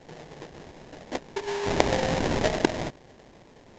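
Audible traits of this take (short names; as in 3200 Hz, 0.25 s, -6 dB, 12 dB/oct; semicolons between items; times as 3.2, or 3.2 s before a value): aliases and images of a low sample rate 1300 Hz, jitter 20%; A-law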